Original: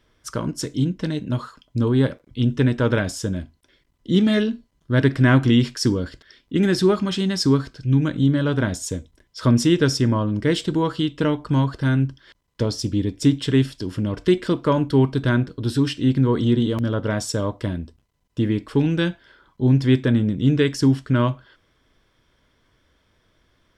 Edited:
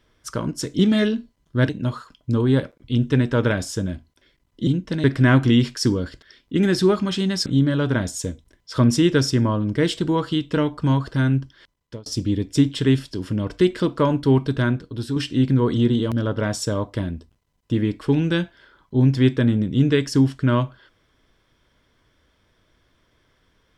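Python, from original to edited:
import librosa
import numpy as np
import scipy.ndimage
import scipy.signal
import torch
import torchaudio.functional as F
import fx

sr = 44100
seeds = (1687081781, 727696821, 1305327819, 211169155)

y = fx.edit(x, sr, fx.swap(start_s=0.79, length_s=0.37, other_s=4.14, other_length_s=0.9),
    fx.cut(start_s=7.46, length_s=0.67),
    fx.fade_out_span(start_s=12.06, length_s=0.67, curve='qsin'),
    fx.fade_out_to(start_s=15.14, length_s=0.69, floor_db=-6.5), tone=tone)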